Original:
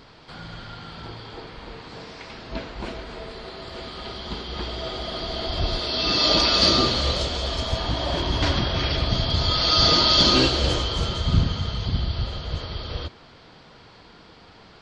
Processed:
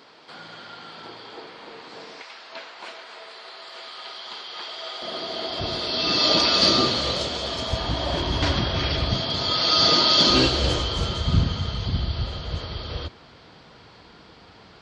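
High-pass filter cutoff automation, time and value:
300 Hz
from 0:02.22 810 Hz
from 0:05.02 260 Hz
from 0:05.60 120 Hz
from 0:07.69 48 Hz
from 0:09.18 170 Hz
from 0:10.30 41 Hz

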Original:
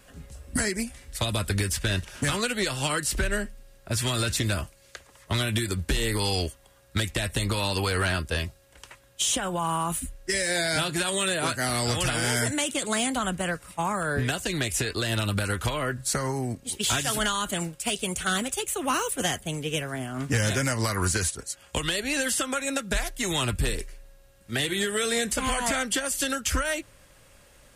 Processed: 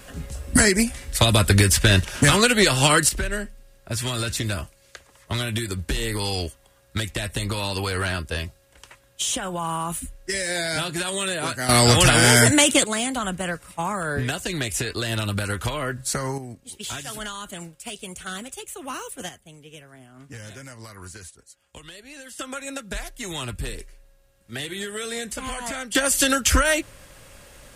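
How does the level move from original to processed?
+10 dB
from 0:03.09 0 dB
from 0:11.69 +11 dB
from 0:12.84 +1 dB
from 0:16.38 −7 dB
from 0:19.29 −15 dB
from 0:22.39 −4.5 dB
from 0:25.95 +8 dB

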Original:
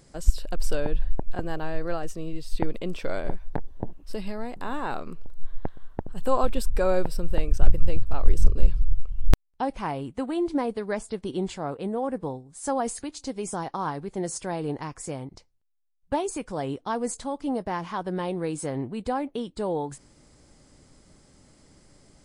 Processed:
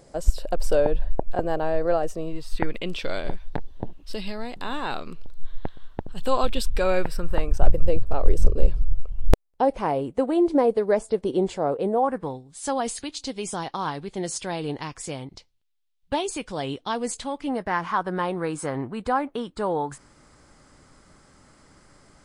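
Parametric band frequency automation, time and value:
parametric band +11 dB 1.3 octaves
0:02.15 600 Hz
0:02.97 3,600 Hz
0:06.74 3,600 Hz
0:07.80 510 Hz
0:11.88 510 Hz
0:12.41 3,400 Hz
0:17.06 3,400 Hz
0:17.91 1,300 Hz

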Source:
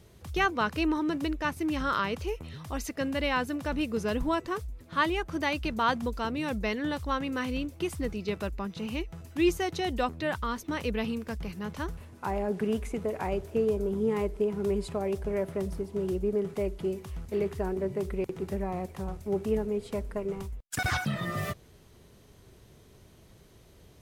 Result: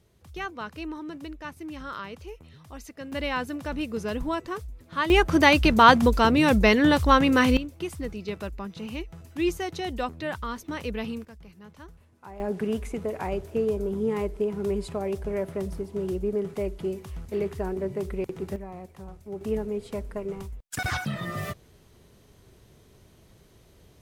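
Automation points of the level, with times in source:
−8 dB
from 0:03.12 −0.5 dB
from 0:05.10 +12 dB
from 0:07.57 −1 dB
from 0:11.25 −12 dB
from 0:12.40 +1 dB
from 0:18.56 −7 dB
from 0:19.41 0 dB

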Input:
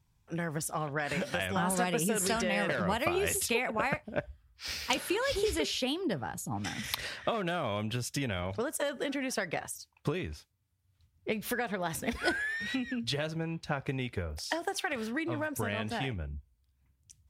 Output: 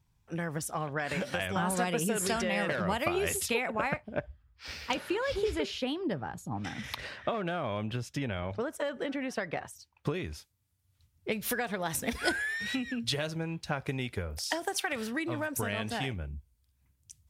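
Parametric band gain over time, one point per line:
parametric band 12,000 Hz 2.1 octaves
0:03.60 −1.5 dB
0:04.25 −12 dB
0:09.58 −12 dB
0:10.12 −4 dB
0:10.33 +6 dB

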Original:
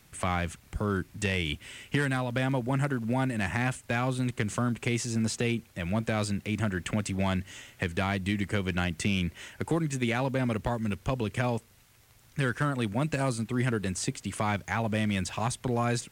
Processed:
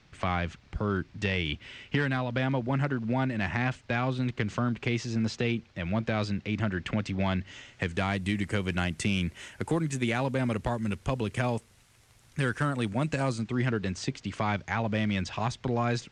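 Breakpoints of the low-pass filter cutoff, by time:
low-pass filter 24 dB per octave
0:07.47 5,300 Hz
0:08.27 11,000 Hz
0:12.67 11,000 Hz
0:13.69 5,800 Hz

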